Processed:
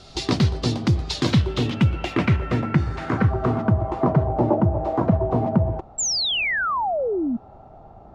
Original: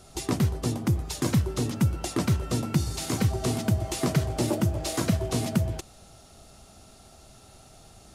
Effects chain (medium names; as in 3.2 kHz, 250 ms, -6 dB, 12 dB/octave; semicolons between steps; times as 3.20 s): 1.26–2.56 s: careless resampling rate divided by 2×, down filtered, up zero stuff; low-pass sweep 4.3 kHz -> 870 Hz, 1.08–4.24 s; 5.98–7.37 s: painted sound fall 220–7700 Hz -28 dBFS; trim +5 dB